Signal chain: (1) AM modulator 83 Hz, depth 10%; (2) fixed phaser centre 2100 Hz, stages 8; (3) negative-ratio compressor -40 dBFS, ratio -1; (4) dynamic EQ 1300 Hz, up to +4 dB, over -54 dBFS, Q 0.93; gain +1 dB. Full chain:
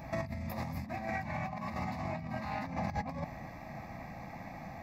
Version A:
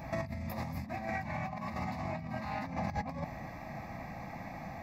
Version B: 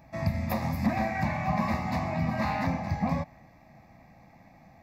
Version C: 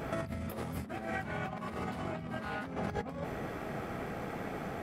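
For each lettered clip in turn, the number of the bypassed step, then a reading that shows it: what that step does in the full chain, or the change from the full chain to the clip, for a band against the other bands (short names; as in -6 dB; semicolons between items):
1, momentary loudness spread change -2 LU; 3, momentary loudness spread change -6 LU; 2, 1 kHz band -3.5 dB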